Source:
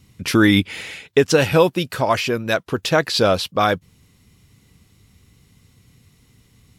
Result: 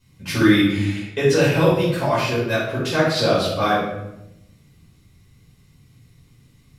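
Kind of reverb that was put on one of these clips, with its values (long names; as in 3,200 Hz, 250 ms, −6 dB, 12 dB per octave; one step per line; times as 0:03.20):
rectangular room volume 310 cubic metres, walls mixed, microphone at 5.1 metres
level −14.5 dB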